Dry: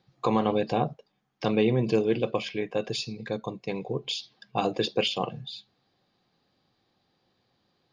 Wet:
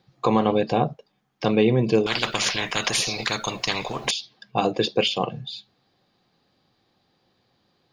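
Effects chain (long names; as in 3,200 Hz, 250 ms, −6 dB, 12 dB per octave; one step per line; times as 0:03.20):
0:02.06–0:04.11: every bin compressed towards the loudest bin 10 to 1
level +4.5 dB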